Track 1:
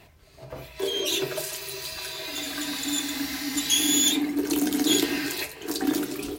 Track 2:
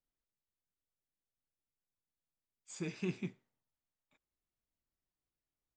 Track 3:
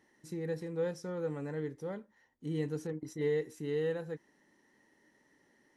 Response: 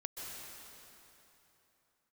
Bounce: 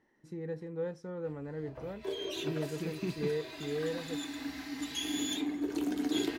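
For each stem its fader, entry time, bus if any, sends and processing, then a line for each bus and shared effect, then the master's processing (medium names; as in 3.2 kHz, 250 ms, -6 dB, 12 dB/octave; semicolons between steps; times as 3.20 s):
-8.5 dB, 1.25 s, send -18.5 dB, none
+1.0 dB, 0.00 s, no send, none
-2.0 dB, 0.00 s, no send, none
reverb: on, RT60 3.3 s, pre-delay 118 ms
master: low-pass 2 kHz 6 dB/octave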